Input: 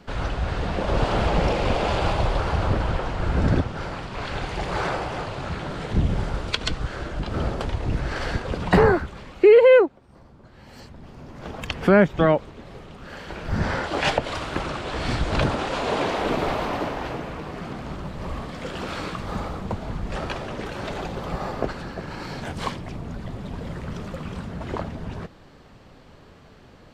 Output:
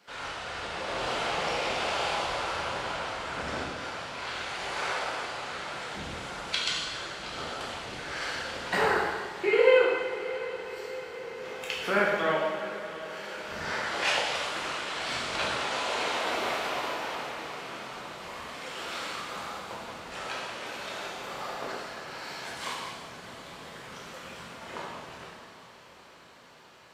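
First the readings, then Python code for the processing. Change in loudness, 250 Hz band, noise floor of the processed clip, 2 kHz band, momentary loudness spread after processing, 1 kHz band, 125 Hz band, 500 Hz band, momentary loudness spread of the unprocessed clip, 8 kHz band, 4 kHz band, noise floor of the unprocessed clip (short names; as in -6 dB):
-6.5 dB, -14.5 dB, -51 dBFS, -1.0 dB, 14 LU, -4.0 dB, -21.0 dB, -8.5 dB, 16 LU, +2.5 dB, +0.5 dB, -49 dBFS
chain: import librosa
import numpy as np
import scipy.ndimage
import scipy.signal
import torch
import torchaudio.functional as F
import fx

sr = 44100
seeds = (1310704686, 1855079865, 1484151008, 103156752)

y = fx.highpass(x, sr, hz=1400.0, slope=6)
y = fx.high_shelf(y, sr, hz=7100.0, db=4.0)
y = fx.echo_diffused(y, sr, ms=726, feedback_pct=69, wet_db=-14.0)
y = fx.rev_plate(y, sr, seeds[0], rt60_s=1.5, hf_ratio=1.0, predelay_ms=0, drr_db=-5.5)
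y = F.gain(torch.from_numpy(y), -6.0).numpy()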